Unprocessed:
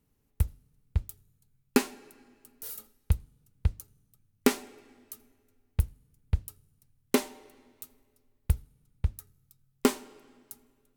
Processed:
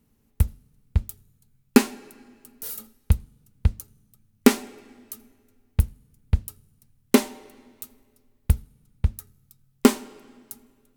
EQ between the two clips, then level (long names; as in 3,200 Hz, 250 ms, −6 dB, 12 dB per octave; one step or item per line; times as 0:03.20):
parametric band 220 Hz +9.5 dB 0.22 octaves
+6.0 dB